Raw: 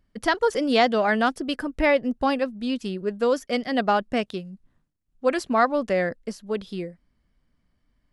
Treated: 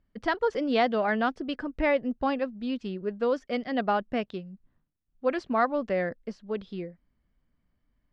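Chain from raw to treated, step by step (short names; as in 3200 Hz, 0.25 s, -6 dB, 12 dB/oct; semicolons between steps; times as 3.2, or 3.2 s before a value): air absorption 180 m; gain -4 dB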